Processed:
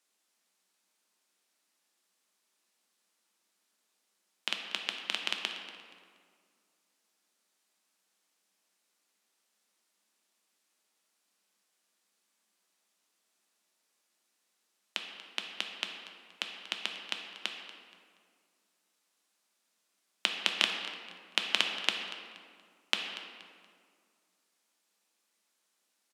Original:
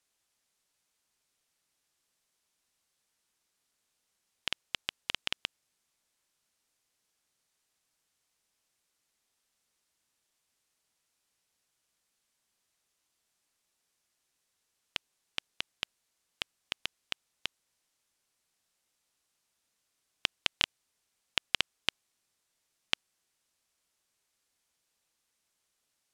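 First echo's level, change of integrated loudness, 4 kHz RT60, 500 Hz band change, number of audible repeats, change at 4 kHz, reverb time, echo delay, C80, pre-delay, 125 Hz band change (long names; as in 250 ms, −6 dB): −16.5 dB, +1.5 dB, 1.3 s, +3.5 dB, 2, +2.0 dB, 2.1 s, 237 ms, 5.5 dB, 3 ms, can't be measured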